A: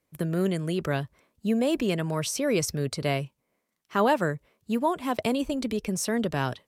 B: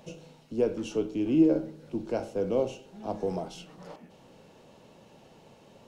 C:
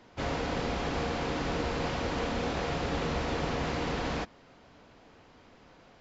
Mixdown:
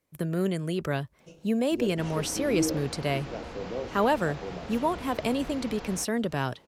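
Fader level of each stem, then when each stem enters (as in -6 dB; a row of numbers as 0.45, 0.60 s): -1.5, -7.5, -9.0 dB; 0.00, 1.20, 1.80 s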